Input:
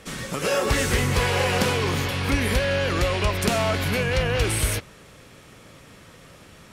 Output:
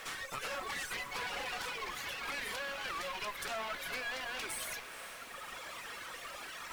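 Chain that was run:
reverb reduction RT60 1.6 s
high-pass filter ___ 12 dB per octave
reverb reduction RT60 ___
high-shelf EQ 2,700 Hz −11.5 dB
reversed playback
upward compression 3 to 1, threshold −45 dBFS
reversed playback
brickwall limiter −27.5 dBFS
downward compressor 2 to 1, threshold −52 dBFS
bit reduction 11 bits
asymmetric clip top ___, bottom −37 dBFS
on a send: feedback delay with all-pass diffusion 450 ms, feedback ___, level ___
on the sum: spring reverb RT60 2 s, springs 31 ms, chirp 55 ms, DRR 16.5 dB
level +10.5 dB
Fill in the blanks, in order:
1,100 Hz, 1.7 s, −58 dBFS, 75%, −13 dB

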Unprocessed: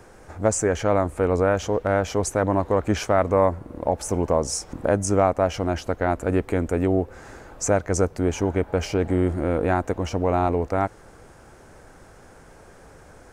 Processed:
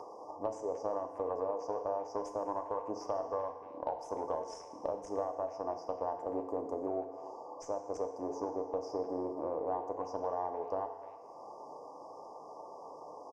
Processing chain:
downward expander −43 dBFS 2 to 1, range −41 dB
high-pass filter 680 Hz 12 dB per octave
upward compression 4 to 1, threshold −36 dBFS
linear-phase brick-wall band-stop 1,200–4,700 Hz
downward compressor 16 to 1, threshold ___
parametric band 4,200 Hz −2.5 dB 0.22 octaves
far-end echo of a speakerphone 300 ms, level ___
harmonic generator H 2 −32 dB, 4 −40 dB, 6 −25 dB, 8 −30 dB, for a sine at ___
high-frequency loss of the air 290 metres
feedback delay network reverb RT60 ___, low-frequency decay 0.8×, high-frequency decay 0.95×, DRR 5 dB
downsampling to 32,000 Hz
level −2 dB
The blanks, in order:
−29 dBFS, −15 dB, −17.5 dBFS, 1.3 s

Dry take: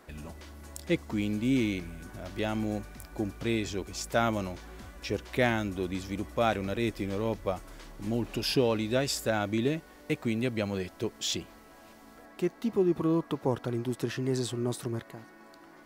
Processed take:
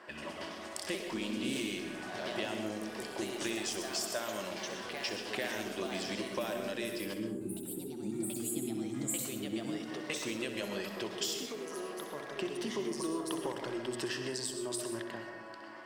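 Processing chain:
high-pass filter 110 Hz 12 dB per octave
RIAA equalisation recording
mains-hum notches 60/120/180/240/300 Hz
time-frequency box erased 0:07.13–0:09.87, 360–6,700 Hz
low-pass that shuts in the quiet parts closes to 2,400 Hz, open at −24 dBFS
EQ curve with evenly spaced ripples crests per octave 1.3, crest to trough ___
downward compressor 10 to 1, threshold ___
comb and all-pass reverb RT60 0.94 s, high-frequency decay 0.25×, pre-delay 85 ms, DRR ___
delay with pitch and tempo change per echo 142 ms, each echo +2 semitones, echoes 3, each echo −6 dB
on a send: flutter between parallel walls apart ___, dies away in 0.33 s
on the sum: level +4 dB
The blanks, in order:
7 dB, −39 dBFS, 5.5 dB, 11 metres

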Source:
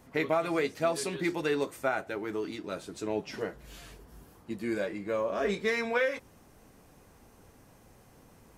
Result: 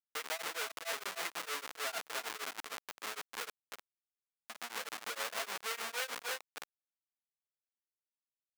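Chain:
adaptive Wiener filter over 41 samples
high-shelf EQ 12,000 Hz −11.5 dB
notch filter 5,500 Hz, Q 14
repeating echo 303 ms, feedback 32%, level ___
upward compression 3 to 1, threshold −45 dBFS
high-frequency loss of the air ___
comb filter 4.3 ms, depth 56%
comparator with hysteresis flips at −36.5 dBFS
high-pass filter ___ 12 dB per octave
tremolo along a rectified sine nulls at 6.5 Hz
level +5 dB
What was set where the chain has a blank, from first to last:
−9 dB, 160 metres, 1,100 Hz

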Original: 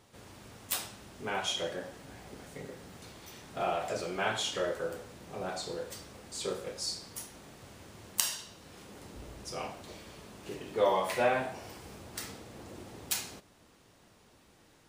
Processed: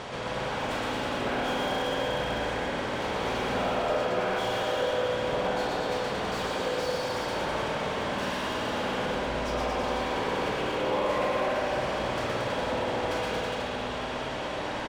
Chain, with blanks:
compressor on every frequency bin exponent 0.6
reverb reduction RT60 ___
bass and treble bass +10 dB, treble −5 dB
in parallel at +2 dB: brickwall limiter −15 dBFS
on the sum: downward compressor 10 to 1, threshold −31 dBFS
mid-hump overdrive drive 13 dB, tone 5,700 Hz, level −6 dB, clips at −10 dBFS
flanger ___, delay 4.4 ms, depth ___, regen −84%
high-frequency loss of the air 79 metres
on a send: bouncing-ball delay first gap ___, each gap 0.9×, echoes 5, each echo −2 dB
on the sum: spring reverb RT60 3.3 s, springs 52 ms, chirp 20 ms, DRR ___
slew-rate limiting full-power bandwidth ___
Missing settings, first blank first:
0.66 s, 0.52 Hz, 4.3 ms, 120 ms, −1.5 dB, 62 Hz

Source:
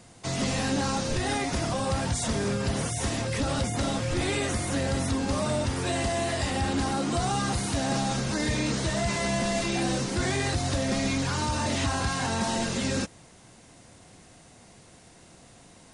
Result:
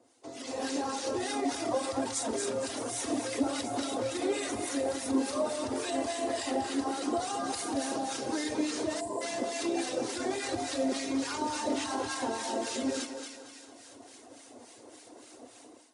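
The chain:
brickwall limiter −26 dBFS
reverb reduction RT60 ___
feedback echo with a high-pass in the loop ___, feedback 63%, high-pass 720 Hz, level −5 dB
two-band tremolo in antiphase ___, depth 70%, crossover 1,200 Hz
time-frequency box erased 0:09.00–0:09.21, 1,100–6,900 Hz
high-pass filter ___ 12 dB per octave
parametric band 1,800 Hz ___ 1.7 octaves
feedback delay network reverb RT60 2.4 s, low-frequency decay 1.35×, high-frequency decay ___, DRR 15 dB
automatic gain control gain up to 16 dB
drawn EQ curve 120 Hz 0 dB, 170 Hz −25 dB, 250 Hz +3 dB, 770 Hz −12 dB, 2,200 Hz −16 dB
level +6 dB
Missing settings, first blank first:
1.9 s, 227 ms, 3.5 Hz, 560 Hz, −4 dB, 0.95×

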